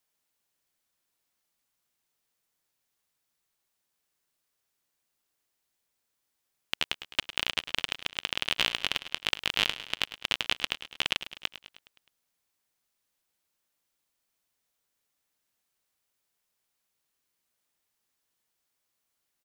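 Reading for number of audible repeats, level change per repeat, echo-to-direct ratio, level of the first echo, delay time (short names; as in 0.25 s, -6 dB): 5, -4.5 dB, -11.5 dB, -13.5 dB, 0.104 s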